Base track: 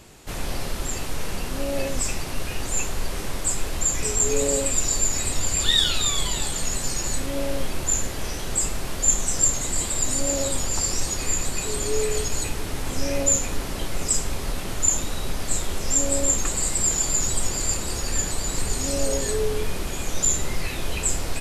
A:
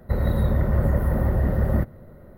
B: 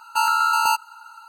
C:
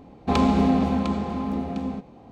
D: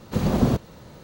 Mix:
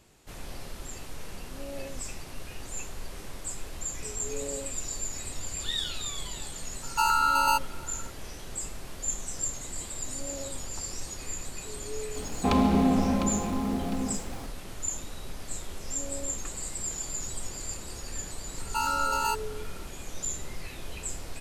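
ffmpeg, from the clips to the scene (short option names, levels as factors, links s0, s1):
-filter_complex "[2:a]asplit=2[s0][s1];[0:a]volume=0.251[s2];[3:a]aeval=exprs='val(0)+0.5*0.0158*sgn(val(0))':c=same[s3];[s0]atrim=end=1.28,asetpts=PTS-STARTPTS,volume=0.596,afade=t=in:d=0.004:c=hsin,afade=t=out:st=1.276:d=0.004:c=hsin,adelay=300762S[s4];[s3]atrim=end=2.31,asetpts=PTS-STARTPTS,volume=0.668,afade=t=in:d=0.004:c=hsin,afade=t=out:st=2.306:d=0.004:c=hsin,adelay=12160[s5];[s1]atrim=end=1.28,asetpts=PTS-STARTPTS,volume=0.355,afade=t=in:d=0.004:c=hsin,afade=t=out:st=1.276:d=0.004:c=hsin,adelay=18590[s6];[s2][s4][s5][s6]amix=inputs=4:normalize=0"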